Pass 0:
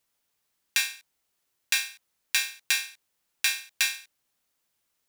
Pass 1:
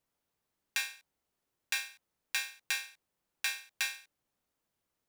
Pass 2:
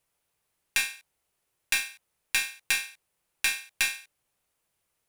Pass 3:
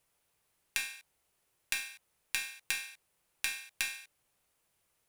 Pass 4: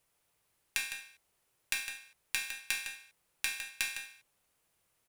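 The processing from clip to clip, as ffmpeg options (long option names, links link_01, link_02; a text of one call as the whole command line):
ffmpeg -i in.wav -af "tiltshelf=frequency=1300:gain=6,volume=-4.5dB" out.wav
ffmpeg -i in.wav -af "equalizer=frequency=250:width_type=o:width=0.67:gain=-8,equalizer=frequency=2500:width_type=o:width=0.67:gain=4,equalizer=frequency=10000:width_type=o:width=0.67:gain=7,aeval=exprs='0.299*(cos(1*acos(clip(val(0)/0.299,-1,1)))-cos(1*PI/2))+0.00944*(cos(8*acos(clip(val(0)/0.299,-1,1)))-cos(8*PI/2))':channel_layout=same,volume=4.5dB" out.wav
ffmpeg -i in.wav -af "acompressor=threshold=-34dB:ratio=4,volume=1.5dB" out.wav
ffmpeg -i in.wav -filter_complex "[0:a]asplit=2[link_01][link_02];[link_02]adelay=157.4,volume=-8dB,highshelf=frequency=4000:gain=-3.54[link_03];[link_01][link_03]amix=inputs=2:normalize=0" out.wav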